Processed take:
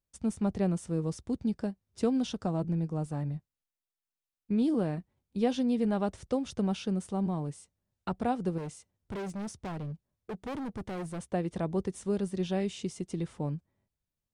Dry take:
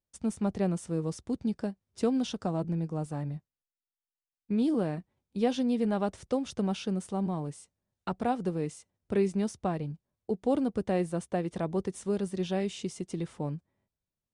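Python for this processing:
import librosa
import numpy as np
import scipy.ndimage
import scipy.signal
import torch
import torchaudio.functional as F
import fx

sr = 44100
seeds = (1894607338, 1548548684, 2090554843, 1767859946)

y = fx.low_shelf(x, sr, hz=130.0, db=6.5)
y = fx.overload_stage(y, sr, gain_db=33.0, at=(8.58, 11.24))
y = F.gain(torch.from_numpy(y), -1.5).numpy()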